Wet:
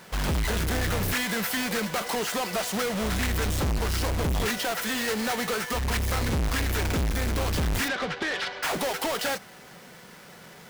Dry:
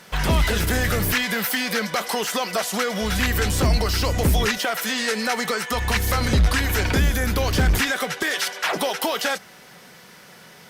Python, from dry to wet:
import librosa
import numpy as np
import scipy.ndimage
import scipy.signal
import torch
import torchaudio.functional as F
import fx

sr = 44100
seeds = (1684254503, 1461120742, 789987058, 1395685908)

y = fx.halfwave_hold(x, sr)
y = fx.lowpass(y, sr, hz=4500.0, slope=24, at=(7.88, 8.63))
y = 10.0 ** (-17.5 / 20.0) * np.tanh(y / 10.0 ** (-17.5 / 20.0))
y = F.gain(torch.from_numpy(y), -6.0).numpy()